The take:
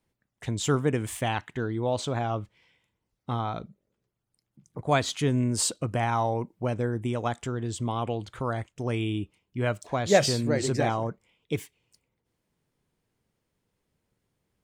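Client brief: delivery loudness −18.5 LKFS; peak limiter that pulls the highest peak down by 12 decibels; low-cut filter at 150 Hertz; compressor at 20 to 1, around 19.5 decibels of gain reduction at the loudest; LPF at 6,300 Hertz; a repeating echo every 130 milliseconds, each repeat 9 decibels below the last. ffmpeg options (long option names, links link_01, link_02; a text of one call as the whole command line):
ffmpeg -i in.wav -af "highpass=150,lowpass=6300,acompressor=threshold=-33dB:ratio=20,alimiter=level_in=7.5dB:limit=-24dB:level=0:latency=1,volume=-7.5dB,aecho=1:1:130|260|390|520:0.355|0.124|0.0435|0.0152,volume=24dB" out.wav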